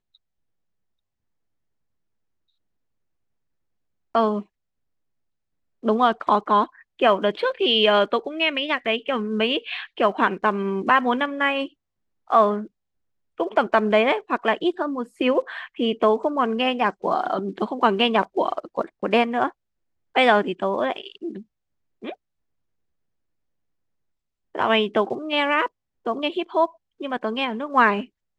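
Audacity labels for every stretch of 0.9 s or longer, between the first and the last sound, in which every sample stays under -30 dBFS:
4.410000	5.840000	silence
22.120000	24.550000	silence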